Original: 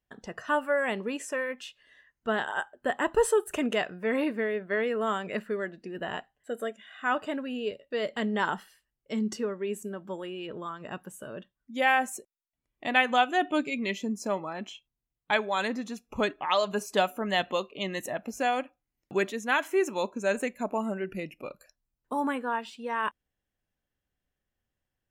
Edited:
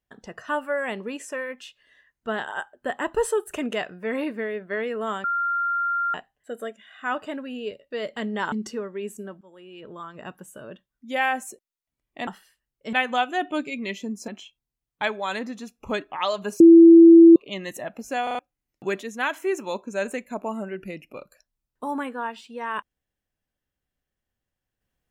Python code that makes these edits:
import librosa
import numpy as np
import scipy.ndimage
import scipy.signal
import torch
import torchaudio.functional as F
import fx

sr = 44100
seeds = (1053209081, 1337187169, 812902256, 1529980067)

y = fx.edit(x, sr, fx.bleep(start_s=5.24, length_s=0.9, hz=1390.0, db=-21.5),
    fx.move(start_s=8.52, length_s=0.66, to_s=12.93),
    fx.fade_in_from(start_s=10.07, length_s=0.69, floor_db=-22.0),
    fx.cut(start_s=14.28, length_s=0.29),
    fx.bleep(start_s=16.89, length_s=0.76, hz=333.0, db=-6.0),
    fx.stutter_over(start_s=18.52, slice_s=0.04, count=4), tone=tone)